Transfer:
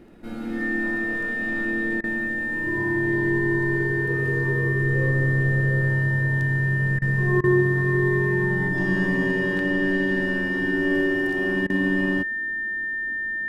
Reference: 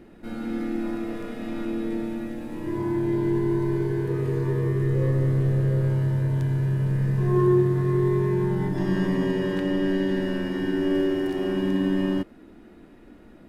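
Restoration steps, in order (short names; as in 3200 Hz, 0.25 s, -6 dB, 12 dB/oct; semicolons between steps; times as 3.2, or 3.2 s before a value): de-click; notch 1800 Hz, Q 30; interpolate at 2.01/6.99/7.41/11.67, 27 ms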